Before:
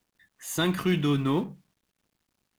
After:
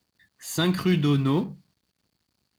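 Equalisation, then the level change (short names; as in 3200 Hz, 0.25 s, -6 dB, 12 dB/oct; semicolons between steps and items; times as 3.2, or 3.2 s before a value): HPF 77 Hz; low shelf 140 Hz +10.5 dB; bell 4500 Hz +11.5 dB 0.27 oct; 0.0 dB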